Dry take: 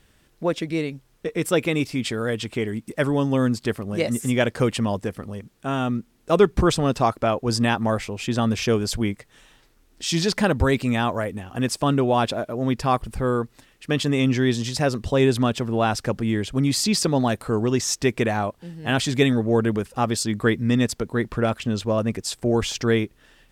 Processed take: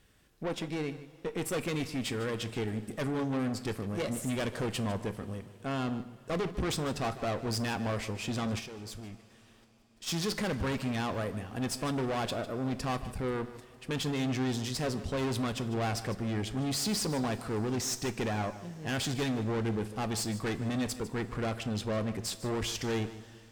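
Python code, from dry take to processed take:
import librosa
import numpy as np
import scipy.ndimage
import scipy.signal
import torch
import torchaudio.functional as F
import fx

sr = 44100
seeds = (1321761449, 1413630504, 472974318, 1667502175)

p1 = fx.tube_stage(x, sr, drive_db=25.0, bias=0.5)
p2 = fx.notch(p1, sr, hz=880.0, q=24.0)
p3 = p2 + fx.echo_single(p2, sr, ms=151, db=-15.0, dry=0)
p4 = fx.level_steps(p3, sr, step_db=20, at=(8.58, 10.06), fade=0.02)
p5 = fx.rev_double_slope(p4, sr, seeds[0], early_s=0.32, late_s=4.8, knee_db=-18, drr_db=10.5)
y = p5 * 10.0 ** (-4.0 / 20.0)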